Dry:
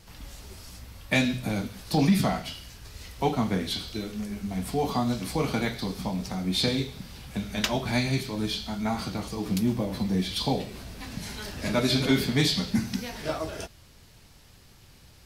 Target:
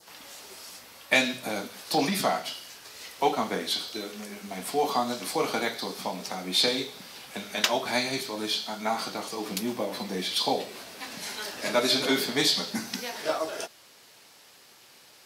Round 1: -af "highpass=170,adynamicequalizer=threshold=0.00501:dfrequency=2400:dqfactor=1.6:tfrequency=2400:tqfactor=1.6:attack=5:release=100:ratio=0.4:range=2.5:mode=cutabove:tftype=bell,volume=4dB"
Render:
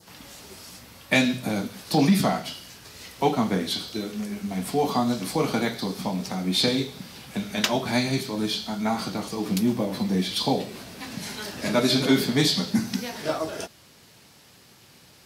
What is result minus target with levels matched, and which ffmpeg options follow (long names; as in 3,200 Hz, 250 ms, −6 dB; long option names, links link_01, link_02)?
125 Hz band +10.5 dB
-af "highpass=430,adynamicequalizer=threshold=0.00501:dfrequency=2400:dqfactor=1.6:tfrequency=2400:tqfactor=1.6:attack=5:release=100:ratio=0.4:range=2.5:mode=cutabove:tftype=bell,volume=4dB"